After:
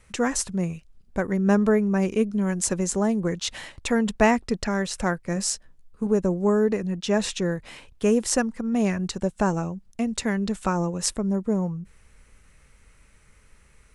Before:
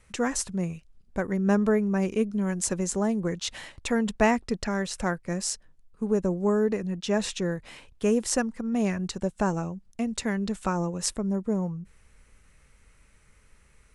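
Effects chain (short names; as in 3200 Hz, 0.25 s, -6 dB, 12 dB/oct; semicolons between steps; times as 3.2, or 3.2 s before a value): 5.35–6.07 doubler 15 ms -7 dB; gain +3 dB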